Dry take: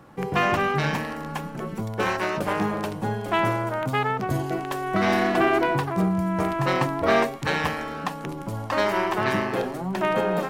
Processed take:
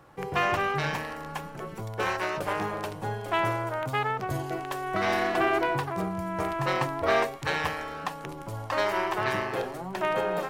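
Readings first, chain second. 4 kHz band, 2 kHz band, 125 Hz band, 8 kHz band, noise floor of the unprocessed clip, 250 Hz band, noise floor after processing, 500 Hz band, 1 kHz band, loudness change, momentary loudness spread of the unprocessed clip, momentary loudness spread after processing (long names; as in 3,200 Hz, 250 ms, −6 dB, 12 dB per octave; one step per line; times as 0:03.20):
−3.0 dB, −3.0 dB, −6.5 dB, −3.0 dB, −35 dBFS, −9.0 dB, −41 dBFS, −4.0 dB, −3.5 dB, −4.5 dB, 10 LU, 11 LU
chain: parametric band 220 Hz −10.5 dB 0.83 octaves
level −3 dB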